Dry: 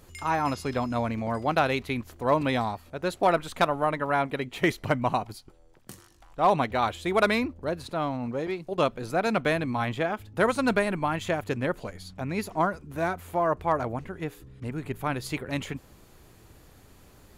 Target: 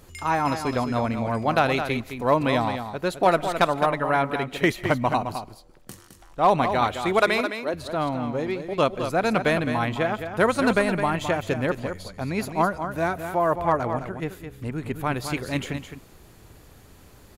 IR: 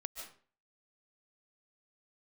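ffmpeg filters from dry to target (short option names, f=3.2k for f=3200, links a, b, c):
-filter_complex "[0:a]asettb=1/sr,asplit=3[a][b][c];[a]atrim=end=7.194[d];[b]atrim=start=7.19:end=7.74,asetpts=PTS-STARTPTS,afade=t=in:d=0.004:c=qsin,afade=t=out:st=0.546:d=0.004:c=qsin,highpass=320[e];[c]atrim=start=7.736[f];[d][e]acrossfade=d=0.004:c1=hsin:c2=qsin[g];[g][f]acrossfade=d=0.004:c1=qsin:c2=hsin,aecho=1:1:213:0.376,asplit=2[h][i];[1:a]atrim=start_sample=2205[j];[i][j]afir=irnorm=-1:irlink=0,volume=-15dB[k];[h][k]amix=inputs=2:normalize=0,volume=2dB"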